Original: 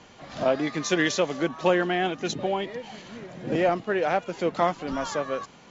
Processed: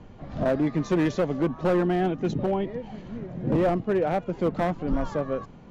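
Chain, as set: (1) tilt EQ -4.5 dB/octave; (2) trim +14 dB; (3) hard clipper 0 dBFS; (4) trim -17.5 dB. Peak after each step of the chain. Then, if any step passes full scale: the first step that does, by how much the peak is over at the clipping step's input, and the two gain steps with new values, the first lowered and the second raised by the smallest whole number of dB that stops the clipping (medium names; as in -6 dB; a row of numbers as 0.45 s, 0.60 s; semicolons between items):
-4.0 dBFS, +10.0 dBFS, 0.0 dBFS, -17.5 dBFS; step 2, 10.0 dB; step 2 +4 dB, step 4 -7.5 dB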